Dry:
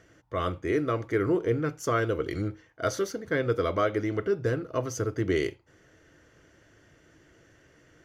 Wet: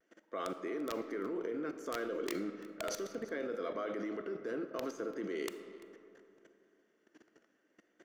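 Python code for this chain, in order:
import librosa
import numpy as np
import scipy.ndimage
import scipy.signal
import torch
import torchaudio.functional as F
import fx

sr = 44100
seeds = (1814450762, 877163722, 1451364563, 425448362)

y = scipy.signal.sosfilt(scipy.signal.cheby1(4, 1.0, 210.0, 'highpass', fs=sr, output='sos'), x)
y = fx.high_shelf(y, sr, hz=5600.0, db=-5.5)
y = fx.level_steps(y, sr, step_db=20)
y = (np.mod(10.0 ** (29.5 / 20.0) * y + 1.0, 2.0) - 1.0) / 10.0 ** (29.5 / 20.0)
y = fx.vibrato(y, sr, rate_hz=0.65, depth_cents=38.0)
y = y + 10.0 ** (-20.5 / 20.0) * np.pad(y, (int(341 * sr / 1000.0), 0))[:len(y)]
y = fx.rev_freeverb(y, sr, rt60_s=2.9, hf_ratio=0.45, predelay_ms=0, drr_db=9.5)
y = y * 10.0 ** (2.0 / 20.0)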